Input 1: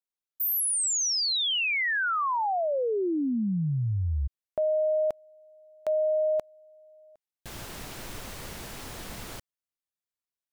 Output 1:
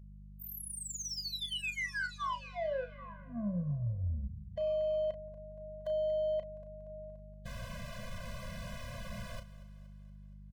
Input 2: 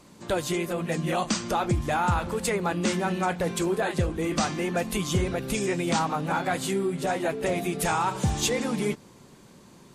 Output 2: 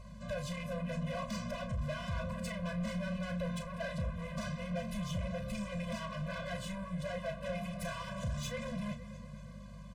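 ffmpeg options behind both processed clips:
-filter_complex "[0:a]asplit=2[s0][s1];[s1]acompressor=threshold=0.0178:ratio=6:attack=19:release=145,volume=0.944[s2];[s0][s2]amix=inputs=2:normalize=0,lowpass=f=2500:p=1,aecho=1:1:235|470|705|940|1175:0.112|0.0617|0.0339|0.0187|0.0103,asoftclip=type=tanh:threshold=0.0376,aeval=exprs='val(0)+0.00562*(sin(2*PI*50*n/s)+sin(2*PI*2*50*n/s)/2+sin(2*PI*3*50*n/s)/3+sin(2*PI*4*50*n/s)/4+sin(2*PI*5*50*n/s)/5)':c=same,asplit=2[s3][s4];[s4]adelay=34,volume=0.355[s5];[s3][s5]amix=inputs=2:normalize=0,afftfilt=real='re*eq(mod(floor(b*sr/1024/240),2),0)':imag='im*eq(mod(floor(b*sr/1024/240),2),0)':win_size=1024:overlap=0.75,volume=0.596"

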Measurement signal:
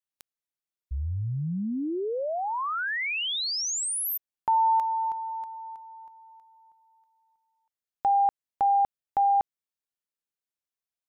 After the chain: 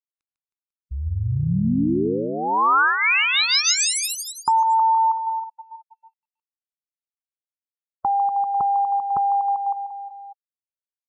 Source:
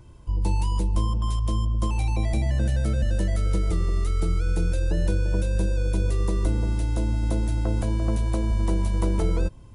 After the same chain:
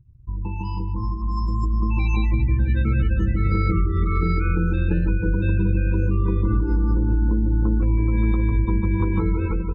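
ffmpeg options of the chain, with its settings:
-af "lowpass=6900,equalizer=f=2000:t=o:w=0.44:g=8,aecho=1:1:150|315|496.5|696.2|915.8:0.631|0.398|0.251|0.158|0.1,acompressor=threshold=0.0708:ratio=8:attack=4.8:release=323:knee=1:detection=peak,lowshelf=f=75:g=-7.5,aecho=1:1:0.8:0.81,aeval=exprs='sgn(val(0))*max(abs(val(0))-0.0015,0)':c=same,afftdn=nr=35:nf=-36,dynaudnorm=f=630:g=5:m=2.51,bandreject=f=3400:w=11"

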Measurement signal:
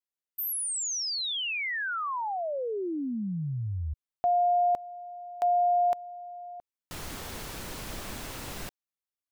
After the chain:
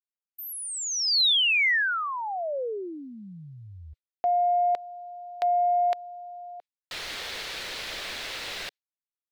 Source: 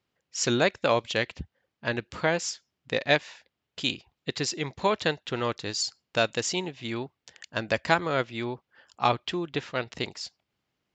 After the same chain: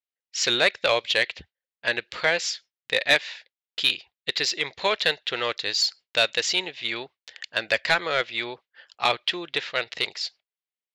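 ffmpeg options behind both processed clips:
-filter_complex "[0:a]equalizer=f=125:t=o:w=1:g=-3,equalizer=f=250:t=o:w=1:g=-5,equalizer=f=500:t=o:w=1:g=4,equalizer=f=1000:t=o:w=1:g=-4,equalizer=f=2000:t=o:w=1:g=6,equalizer=f=4000:t=o:w=1:g=10,asplit=2[s0][s1];[s1]highpass=f=720:p=1,volume=5.01,asoftclip=type=tanh:threshold=1[s2];[s0][s2]amix=inputs=2:normalize=0,lowpass=f=3600:p=1,volume=0.501,agate=range=0.0447:threshold=0.00708:ratio=3:release=166:detection=peak,volume=0.531"

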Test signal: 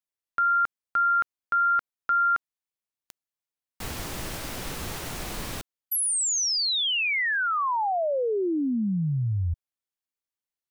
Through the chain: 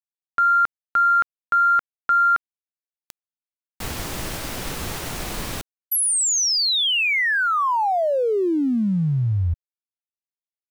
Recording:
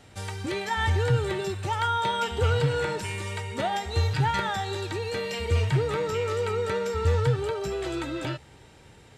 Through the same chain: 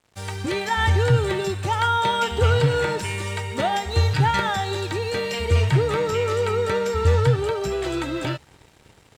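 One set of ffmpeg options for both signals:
-af "dynaudnorm=f=150:g=3:m=1.88,aeval=exprs='sgn(val(0))*max(abs(val(0))-0.00398,0)':c=same"

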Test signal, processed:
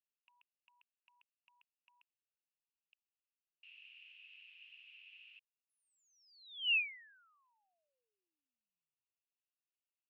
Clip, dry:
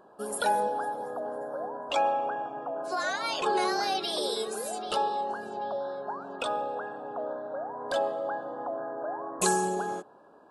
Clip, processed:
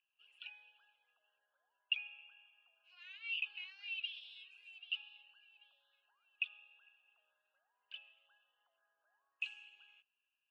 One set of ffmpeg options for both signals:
-af "asuperpass=centerf=2700:order=4:qfactor=6.9,volume=1.5"

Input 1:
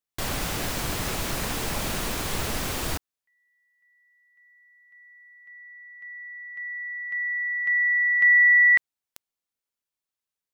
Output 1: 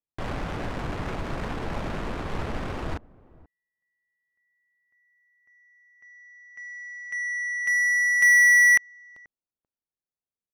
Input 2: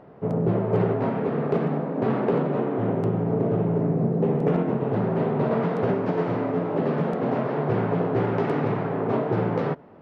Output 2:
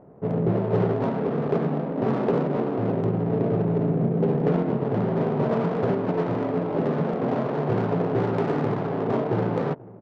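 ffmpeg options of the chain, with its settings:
-filter_complex "[0:a]asplit=2[s0][s1];[s1]adelay=484,volume=0.0891,highshelf=f=4000:g=-10.9[s2];[s0][s2]amix=inputs=2:normalize=0,adynamicsmooth=sensitivity=2.5:basefreq=820"

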